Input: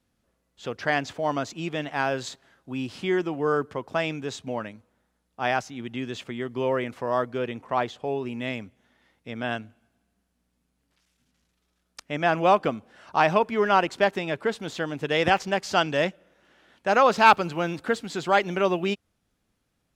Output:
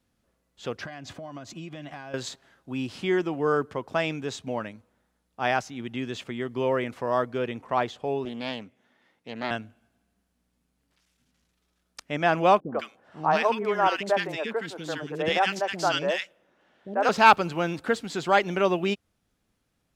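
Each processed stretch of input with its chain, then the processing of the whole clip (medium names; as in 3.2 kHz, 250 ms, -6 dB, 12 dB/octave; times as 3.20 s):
0.84–2.14 s: peaking EQ 95 Hz +5 dB 2.4 oct + compression 12:1, threshold -34 dBFS + comb of notches 450 Hz
8.25–9.51 s: Bessel high-pass 190 Hz + treble shelf 4.1 kHz -5 dB + loudspeaker Doppler distortion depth 0.28 ms
12.60–17.09 s: high-pass 210 Hz 6 dB/octave + three bands offset in time lows, mids, highs 90/160 ms, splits 350/1500 Hz + tape noise reduction on one side only decoder only
whole clip: none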